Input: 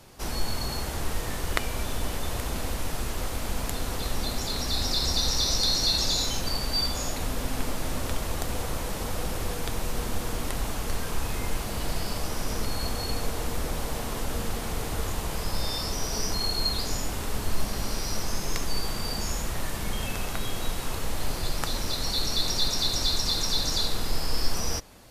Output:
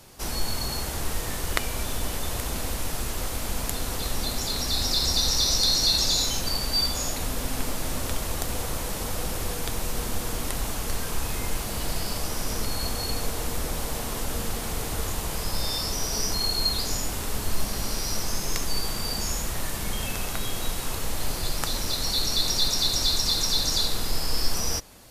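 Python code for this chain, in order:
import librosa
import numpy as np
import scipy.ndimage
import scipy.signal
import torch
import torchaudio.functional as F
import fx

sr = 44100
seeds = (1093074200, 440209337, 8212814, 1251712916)

y = fx.high_shelf(x, sr, hz=4600.0, db=6.0)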